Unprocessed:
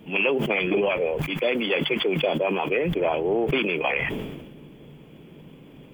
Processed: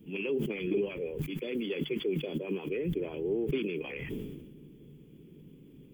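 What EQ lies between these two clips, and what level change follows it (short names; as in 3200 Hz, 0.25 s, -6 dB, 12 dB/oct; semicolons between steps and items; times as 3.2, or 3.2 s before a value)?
EQ curve 410 Hz 0 dB, 670 Hz -19 dB, 14000 Hz +2 dB; -6.0 dB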